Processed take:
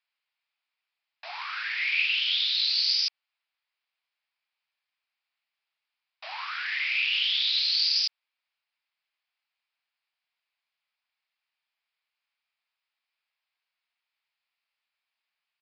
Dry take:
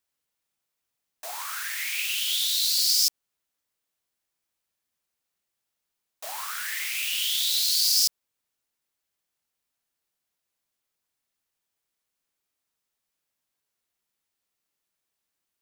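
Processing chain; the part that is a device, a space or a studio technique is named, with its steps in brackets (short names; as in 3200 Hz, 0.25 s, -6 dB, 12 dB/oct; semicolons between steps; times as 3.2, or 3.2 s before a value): musical greeting card (downsampling 11025 Hz; HPF 730 Hz 24 dB/oct; bell 2400 Hz +7.5 dB 0.52 oct)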